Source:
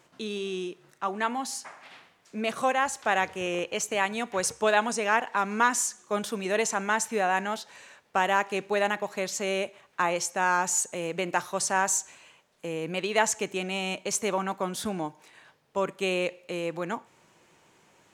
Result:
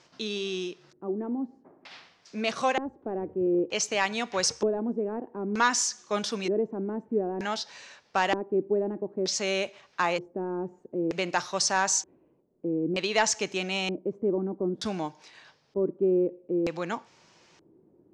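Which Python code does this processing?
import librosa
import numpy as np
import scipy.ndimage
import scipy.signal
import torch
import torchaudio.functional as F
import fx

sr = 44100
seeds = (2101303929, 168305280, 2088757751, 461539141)

y = 10.0 ** (-10.5 / 20.0) * np.tanh(x / 10.0 ** (-10.5 / 20.0))
y = fx.filter_lfo_lowpass(y, sr, shape='square', hz=0.54, low_hz=340.0, high_hz=5200.0, q=3.2)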